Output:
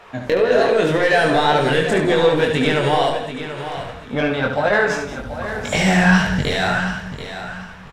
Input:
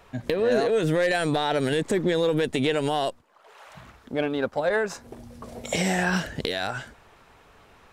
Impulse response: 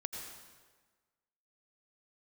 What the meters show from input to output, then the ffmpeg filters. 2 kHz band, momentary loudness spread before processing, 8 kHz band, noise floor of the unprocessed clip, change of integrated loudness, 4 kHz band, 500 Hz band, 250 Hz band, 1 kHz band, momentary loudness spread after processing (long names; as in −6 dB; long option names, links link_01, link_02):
+10.5 dB, 11 LU, +4.0 dB, −56 dBFS, +7.5 dB, +7.5 dB, +7.0 dB, +7.5 dB, +10.0 dB, 13 LU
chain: -filter_complex "[0:a]asubboost=boost=7:cutoff=140,asplit=2[link_01][link_02];[link_02]highpass=frequency=720:poles=1,volume=17dB,asoftclip=type=tanh:threshold=-8dB[link_03];[link_01][link_03]amix=inputs=2:normalize=0,lowpass=frequency=2200:poles=1,volume=-6dB,flanger=delay=19.5:depth=4.2:speed=1.9,aecho=1:1:735|1470|2205:0.282|0.0761|0.0205,asplit=2[link_04][link_05];[1:a]atrim=start_sample=2205,atrim=end_sample=6615,adelay=72[link_06];[link_05][link_06]afir=irnorm=-1:irlink=0,volume=-4dB[link_07];[link_04][link_07]amix=inputs=2:normalize=0,volume=5.5dB"